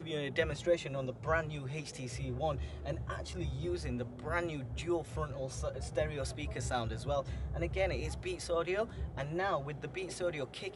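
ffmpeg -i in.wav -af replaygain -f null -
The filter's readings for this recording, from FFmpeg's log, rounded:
track_gain = +17.0 dB
track_peak = 0.096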